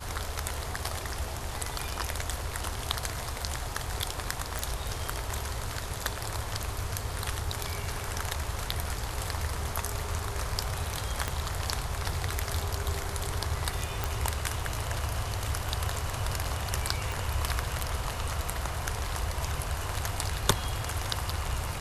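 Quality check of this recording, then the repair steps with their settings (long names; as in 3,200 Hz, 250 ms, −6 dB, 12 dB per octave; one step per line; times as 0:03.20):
0:04.59: click
0:11.28: click −14 dBFS
0:14.04: click
0:17.12: click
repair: click removal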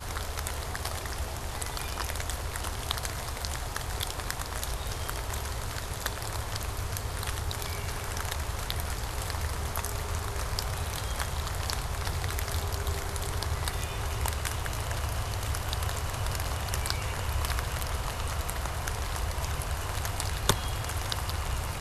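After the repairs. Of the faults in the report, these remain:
0:11.28: click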